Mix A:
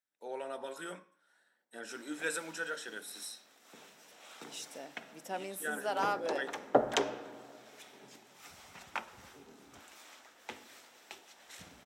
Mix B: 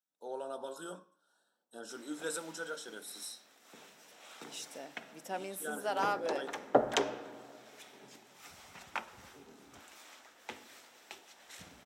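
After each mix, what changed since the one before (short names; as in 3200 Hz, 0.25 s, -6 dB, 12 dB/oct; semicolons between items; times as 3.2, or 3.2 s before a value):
first voice: add Butterworth band-stop 2100 Hz, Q 1.2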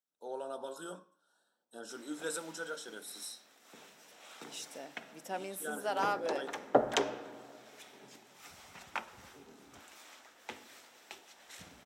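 none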